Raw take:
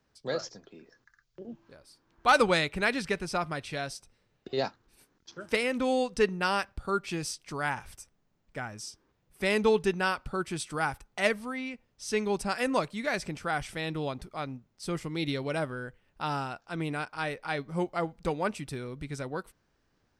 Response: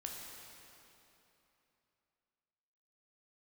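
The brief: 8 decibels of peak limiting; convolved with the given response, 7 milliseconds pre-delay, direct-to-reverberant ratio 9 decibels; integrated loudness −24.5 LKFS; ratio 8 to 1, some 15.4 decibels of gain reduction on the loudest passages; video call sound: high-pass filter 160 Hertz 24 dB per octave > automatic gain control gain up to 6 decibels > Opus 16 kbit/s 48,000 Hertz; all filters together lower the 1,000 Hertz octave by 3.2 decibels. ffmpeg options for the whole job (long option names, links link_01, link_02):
-filter_complex "[0:a]equalizer=frequency=1000:width_type=o:gain=-4.5,acompressor=threshold=-36dB:ratio=8,alimiter=level_in=7.5dB:limit=-24dB:level=0:latency=1,volume=-7.5dB,asplit=2[link_01][link_02];[1:a]atrim=start_sample=2205,adelay=7[link_03];[link_02][link_03]afir=irnorm=-1:irlink=0,volume=-7.5dB[link_04];[link_01][link_04]amix=inputs=2:normalize=0,highpass=frequency=160:width=0.5412,highpass=frequency=160:width=1.3066,dynaudnorm=maxgain=6dB,volume=17dB" -ar 48000 -c:a libopus -b:a 16k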